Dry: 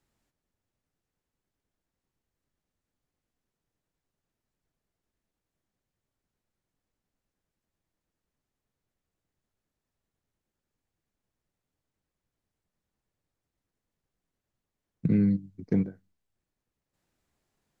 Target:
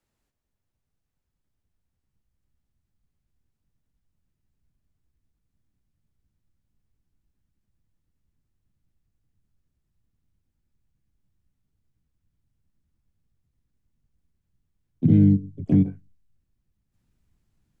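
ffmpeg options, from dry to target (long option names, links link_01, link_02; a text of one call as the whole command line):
ffmpeg -i in.wav -filter_complex "[0:a]asubboost=boost=7.5:cutoff=160,acrossover=split=140|3000[link_01][link_02][link_03];[link_02]acompressor=threshold=-15dB:ratio=6[link_04];[link_01][link_04][link_03]amix=inputs=3:normalize=0,asplit=2[link_05][link_06];[link_06]asetrate=66075,aresample=44100,atempo=0.66742,volume=-5dB[link_07];[link_05][link_07]amix=inputs=2:normalize=0,volume=-2.5dB" out.wav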